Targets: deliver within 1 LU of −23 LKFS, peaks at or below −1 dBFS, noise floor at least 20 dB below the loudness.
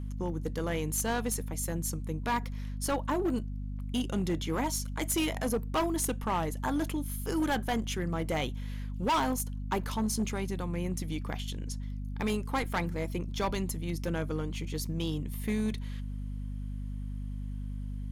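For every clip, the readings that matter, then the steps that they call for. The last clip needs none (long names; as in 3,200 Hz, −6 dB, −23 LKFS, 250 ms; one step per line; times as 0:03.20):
share of clipped samples 1.5%; peaks flattened at −24.0 dBFS; mains hum 50 Hz; hum harmonics up to 250 Hz; level of the hum −34 dBFS; integrated loudness −33.0 LKFS; sample peak −24.0 dBFS; target loudness −23.0 LKFS
→ clipped peaks rebuilt −24 dBFS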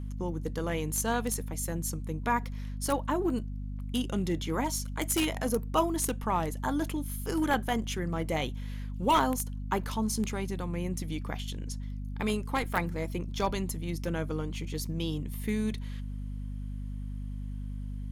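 share of clipped samples 0.0%; mains hum 50 Hz; hum harmonics up to 250 Hz; level of the hum −34 dBFS
→ hum removal 50 Hz, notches 5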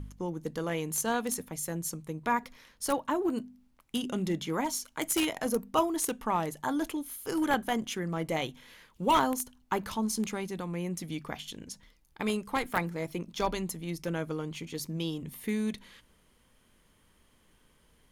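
mains hum none found; integrated loudness −32.5 LKFS; sample peak −14.0 dBFS; target loudness −23.0 LKFS
→ level +9.5 dB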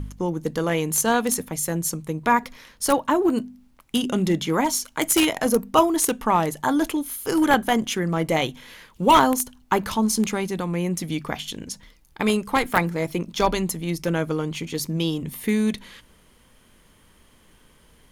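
integrated loudness −23.0 LKFS; sample peak −4.5 dBFS; background noise floor −57 dBFS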